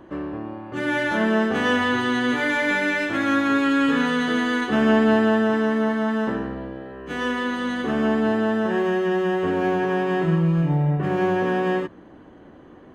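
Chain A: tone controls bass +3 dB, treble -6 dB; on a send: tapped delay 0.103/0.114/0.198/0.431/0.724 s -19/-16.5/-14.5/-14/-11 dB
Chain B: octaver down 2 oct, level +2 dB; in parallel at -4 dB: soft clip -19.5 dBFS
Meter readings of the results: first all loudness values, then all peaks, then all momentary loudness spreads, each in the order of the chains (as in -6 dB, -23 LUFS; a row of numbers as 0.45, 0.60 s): -20.0, -17.5 LUFS; -6.0, -3.5 dBFS; 13, 8 LU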